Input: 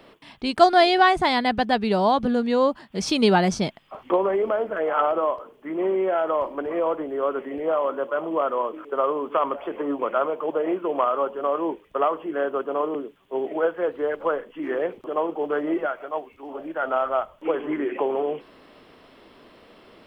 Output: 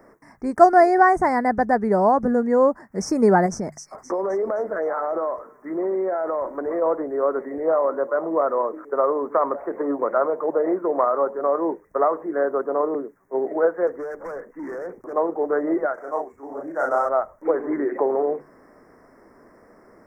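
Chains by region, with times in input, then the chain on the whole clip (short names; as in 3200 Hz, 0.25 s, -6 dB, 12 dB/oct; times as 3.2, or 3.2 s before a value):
3.46–6.82 compressor, threshold -23 dBFS + thin delay 0.261 s, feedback 39%, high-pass 3500 Hz, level -3 dB
13.87–15.13 compressor 4:1, threshold -25 dBFS + hard clip -29.5 dBFS
15.94–17.09 median filter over 9 samples + doubler 36 ms -3 dB
whole clip: elliptic band-stop 1900–5600 Hz, stop band 60 dB; notches 50/100/150 Hz; dynamic EQ 540 Hz, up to +4 dB, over -32 dBFS, Q 0.82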